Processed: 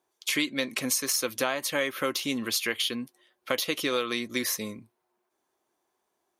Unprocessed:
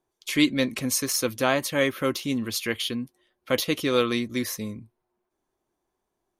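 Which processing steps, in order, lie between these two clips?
high-pass 560 Hz 6 dB/octave; compression 6:1, threshold -29 dBFS, peak gain reduction 10.5 dB; trim +5 dB

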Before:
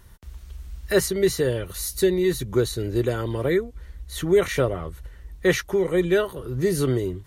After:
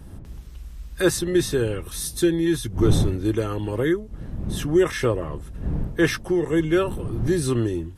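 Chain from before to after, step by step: wind noise 160 Hz -30 dBFS; tape speed -9%

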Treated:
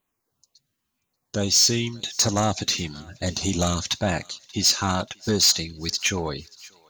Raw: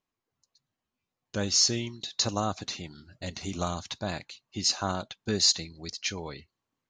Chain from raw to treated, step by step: treble shelf 7.6 kHz +10 dB; in parallel at +2 dB: gain riding within 4 dB 0.5 s; on the sum: LFO notch saw down 1 Hz 400–5700 Hz; saturation -14.5 dBFS, distortion -10 dB; on a send: thinning echo 584 ms, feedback 49%, high-pass 1 kHz, level -23 dB; on the sum: trim +1.5 dB

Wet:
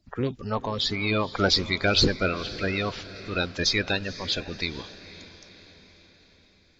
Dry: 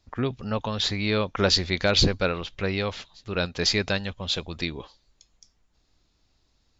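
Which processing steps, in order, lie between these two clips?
coarse spectral quantiser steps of 30 dB; echo that smears into a reverb 504 ms, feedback 52%, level -15.5 dB

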